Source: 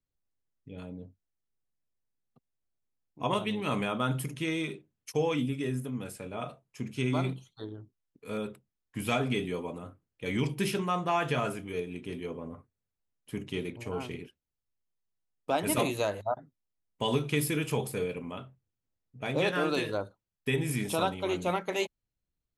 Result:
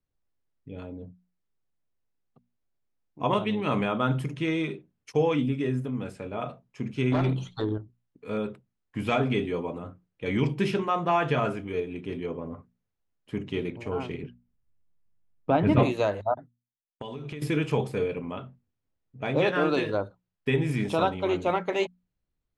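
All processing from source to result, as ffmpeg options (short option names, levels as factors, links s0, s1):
-filter_complex "[0:a]asettb=1/sr,asplit=3[s0][s1][s2];[s0]atrim=end=7.124[s3];[s1]atrim=start=7.12:end=7.78,asetpts=PTS-STARTPTS,afade=t=in:d=0.004:c=qsin,afade=t=out:st=0.656:d=0.004:c=qsin,acompressor=threshold=0.00447:ratio=2:attack=3.2:release=140:knee=1:detection=peak,aeval=exprs='0.0631*sin(PI/2*3.55*val(0)/0.0631)':c=same[s4];[s2]atrim=start=7.776[s5];[s3][s4]acrossfade=d=0.004:c1=hsin:c2=qsin[s6];[s6][s5]acrossfade=d=0.004:c1=qsin:c2=hsin,asettb=1/sr,asplit=3[s7][s8][s9];[s7]atrim=end=14.234[s10];[s8]atrim=start=14.23:end=15.83,asetpts=PTS-STARTPTS,afade=t=in:d=0.004:c=qsin,afade=t=out:st=1.596:d=0.004:c=qsin,lowpass=5900,bass=f=250:g=12,treble=f=4000:g=-12[s11];[s9]atrim=start=15.826[s12];[s10][s11]acrossfade=d=0.004:c1=hsin:c2=qsin[s13];[s13][s12]acrossfade=d=0.004:c1=qsin:c2=hsin,asettb=1/sr,asplit=3[s14][s15][s16];[s14]atrim=end=16.354[s17];[s15]atrim=start=16.35:end=17.42,asetpts=PTS-STARTPTS,afade=t=in:d=0.004:c=qsin,afade=t=out:st=1.066:d=0.004:c=qsin,agate=range=0.0224:threshold=0.00398:ratio=3:release=100:detection=peak,acompressor=threshold=0.0141:ratio=16:attack=3.2:release=140:knee=1:detection=peak[s18];[s16]atrim=start=17.416[s19];[s17][s18]acrossfade=d=0.004:c1=hsin:c2=qsin[s20];[s20][s19]acrossfade=d=0.004:c1=qsin:c2=hsin,lowpass=7000,highshelf=f=3600:g=-11,bandreject=f=60:t=h:w=6,bandreject=f=120:t=h:w=6,bandreject=f=180:t=h:w=6,bandreject=f=240:t=h:w=6,volume=1.78"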